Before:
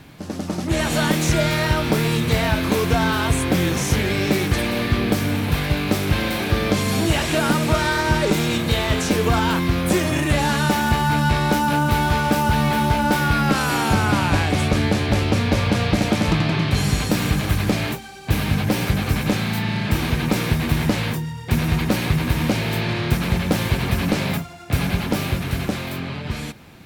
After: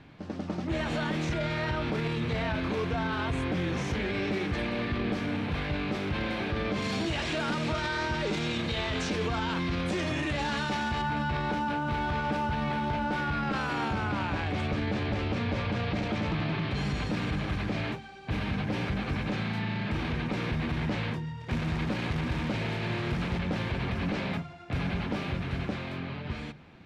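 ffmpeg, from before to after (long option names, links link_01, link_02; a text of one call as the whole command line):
ffmpeg -i in.wav -filter_complex "[0:a]asettb=1/sr,asplit=3[link_01][link_02][link_03];[link_01]atrim=end=6.824[link_04];[link_02]atrim=start=6.82:end=11.02,asetpts=PTS-STARTPTS,afade=type=in:duration=0.004:curve=qsin,afade=type=out:start_time=4.196:duration=0.004:curve=qsin,equalizer=frequency=6300:width=0.52:gain=8[link_05];[link_03]atrim=start=11.016[link_06];[link_04][link_05]acrossfade=duration=0.004:curve1=hsin:curve2=qsin[link_07];[link_07][link_06]acrossfade=duration=0.004:curve1=qsin:curve2=hsin,asettb=1/sr,asplit=3[link_08][link_09][link_10];[link_08]atrim=end=21.404[link_11];[link_09]atrim=start=21.4:end=23.39,asetpts=PTS-STARTPTS,afade=type=in:duration=0.004:curve=qsin,afade=type=out:start_time=1.986:duration=0.004:curve=qsin,acrusher=bits=2:mode=log:mix=0:aa=0.000001[link_12];[link_10]atrim=start=23.386[link_13];[link_11][link_12]acrossfade=duration=0.004:curve1=hsin:curve2=qsin[link_14];[link_14][link_13]acrossfade=duration=0.004:curve1=qsin:curve2=hsin,lowpass=3400,bandreject=frequency=50:width_type=h:width=6,bandreject=frequency=100:width_type=h:width=6,bandreject=frequency=150:width_type=h:width=6,alimiter=limit=-15dB:level=0:latency=1:release=14,volume=-7.5dB" out.wav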